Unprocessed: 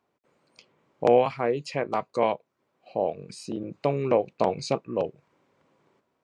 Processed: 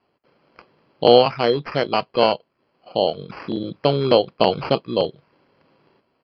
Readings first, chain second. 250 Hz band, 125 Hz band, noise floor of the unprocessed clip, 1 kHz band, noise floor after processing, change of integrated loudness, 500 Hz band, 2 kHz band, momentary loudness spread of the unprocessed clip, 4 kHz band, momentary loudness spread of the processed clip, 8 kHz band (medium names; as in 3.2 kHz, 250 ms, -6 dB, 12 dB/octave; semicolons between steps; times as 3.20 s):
+7.0 dB, +7.0 dB, -76 dBFS, +6.5 dB, -69 dBFS, +7.0 dB, +6.5 dB, +8.0 dB, 13 LU, +18.0 dB, 14 LU, under -15 dB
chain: sample-and-hold 12×; resampled via 11.025 kHz; trim +7 dB